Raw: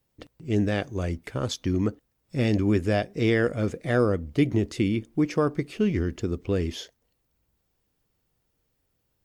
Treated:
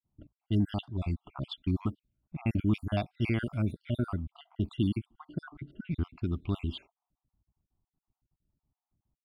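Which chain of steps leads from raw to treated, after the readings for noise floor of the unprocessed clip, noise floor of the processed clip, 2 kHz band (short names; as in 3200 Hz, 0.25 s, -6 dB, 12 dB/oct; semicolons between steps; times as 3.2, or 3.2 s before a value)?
-75 dBFS, under -85 dBFS, -11.5 dB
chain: random spectral dropouts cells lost 57%; low-pass opened by the level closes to 620 Hz, open at -23 dBFS; fixed phaser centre 1800 Hz, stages 6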